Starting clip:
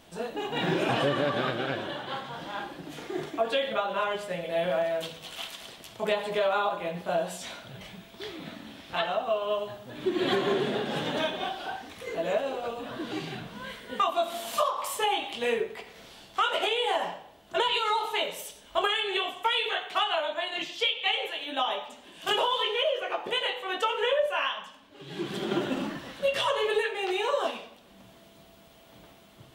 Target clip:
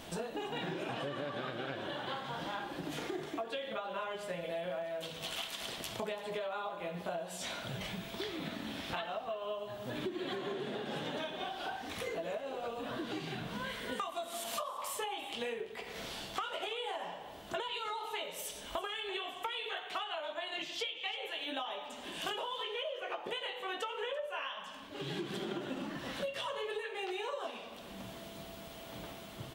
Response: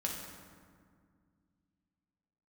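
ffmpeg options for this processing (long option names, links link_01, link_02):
-filter_complex "[0:a]asettb=1/sr,asplit=3[link_01][link_02][link_03];[link_01]atrim=end=13.924[link_04];[link_02]atrim=start=13.92:end=14.44,asetpts=PTS-STARTPTS,afade=type=in:duration=0.004:curve=qsin,afade=type=out:start_time=0.516:duration=0.004:curve=qsin,equalizer=frequency=8900:width=0.78:gain=9.5[link_05];[link_03]atrim=start=14.436[link_06];[link_04][link_05]acrossfade=duration=0.004:curve1=hsin:curve2=qsin[link_07];[link_07][link_06]acrossfade=duration=0.004:curve1=qsin:curve2=hsin,acompressor=threshold=-43dB:ratio=10,asplit=2[link_08][link_09];[link_09]aecho=0:1:338:0.106[link_10];[link_08][link_10]amix=inputs=2:normalize=0,volume=6.5dB"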